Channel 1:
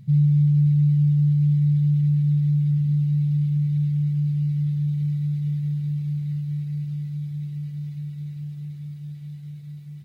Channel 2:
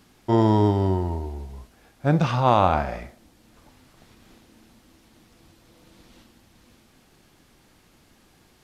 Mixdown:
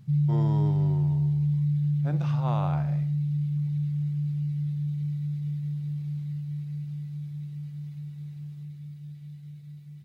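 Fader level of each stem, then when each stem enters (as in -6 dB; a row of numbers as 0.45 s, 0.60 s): -6.0 dB, -15.0 dB; 0.00 s, 0.00 s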